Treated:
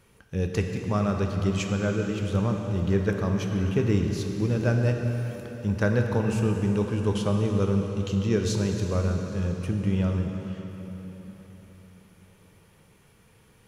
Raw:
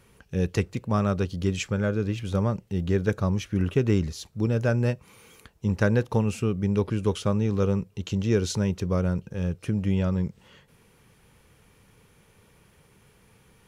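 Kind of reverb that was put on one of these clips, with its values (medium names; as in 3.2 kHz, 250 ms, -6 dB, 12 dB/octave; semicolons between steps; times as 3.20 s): plate-style reverb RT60 4.3 s, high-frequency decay 0.85×, DRR 2.5 dB; trim -2 dB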